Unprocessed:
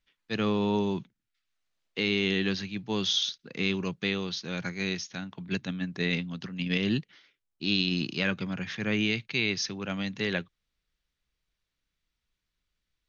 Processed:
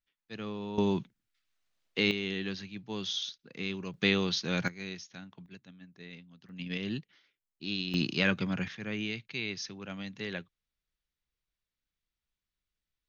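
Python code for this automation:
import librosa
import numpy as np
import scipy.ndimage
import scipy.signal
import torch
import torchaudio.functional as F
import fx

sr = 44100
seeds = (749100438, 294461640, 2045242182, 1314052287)

y = fx.gain(x, sr, db=fx.steps((0.0, -11.5), (0.78, 1.0), (2.11, -7.5), (3.94, 3.0), (4.68, -9.5), (5.46, -19.5), (6.49, -8.0), (7.94, 1.0), (8.68, -8.0)))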